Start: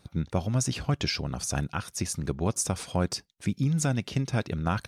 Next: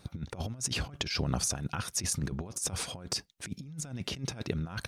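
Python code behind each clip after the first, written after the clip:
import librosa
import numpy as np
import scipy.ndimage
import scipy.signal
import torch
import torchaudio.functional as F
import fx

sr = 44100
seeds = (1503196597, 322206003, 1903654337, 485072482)

y = fx.over_compress(x, sr, threshold_db=-32.0, ratio=-0.5)
y = y * 10.0 ** (-1.5 / 20.0)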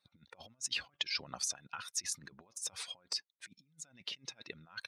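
y = fx.bin_expand(x, sr, power=1.5)
y = fx.bandpass_q(y, sr, hz=3200.0, q=0.66)
y = y * 10.0 ** (1.0 / 20.0)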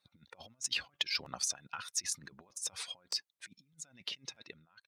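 y = fx.fade_out_tail(x, sr, length_s=0.66)
y = fx.cheby_harmonics(y, sr, harmonics=(7,), levels_db=(-33,), full_scale_db=-18.5)
y = fx.buffer_crackle(y, sr, first_s=0.62, period_s=0.62, block=512, kind='repeat')
y = y * 10.0 ** (2.5 / 20.0)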